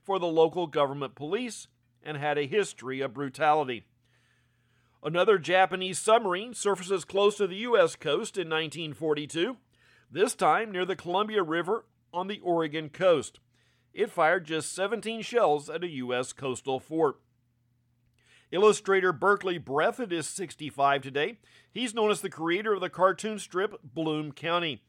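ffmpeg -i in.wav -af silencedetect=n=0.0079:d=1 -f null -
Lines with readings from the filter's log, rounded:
silence_start: 3.79
silence_end: 5.03 | silence_duration: 1.25
silence_start: 17.12
silence_end: 18.52 | silence_duration: 1.41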